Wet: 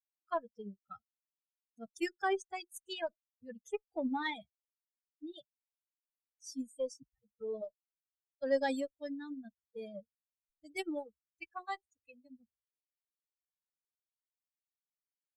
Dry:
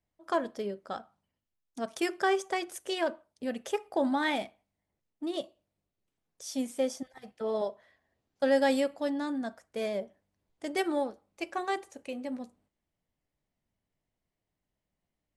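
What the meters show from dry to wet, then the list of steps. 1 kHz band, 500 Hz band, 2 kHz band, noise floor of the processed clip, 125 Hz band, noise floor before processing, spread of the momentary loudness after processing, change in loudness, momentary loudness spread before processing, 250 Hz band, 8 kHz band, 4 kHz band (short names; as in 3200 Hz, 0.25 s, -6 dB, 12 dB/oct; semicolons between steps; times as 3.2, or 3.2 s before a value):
-7.5 dB, -8.0 dB, -7.0 dB, under -85 dBFS, n/a, under -85 dBFS, 18 LU, -7.0 dB, 14 LU, -8.5 dB, -8.5 dB, -8.5 dB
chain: per-bin expansion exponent 3; added harmonics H 6 -39 dB, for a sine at -18 dBFS; gain -2 dB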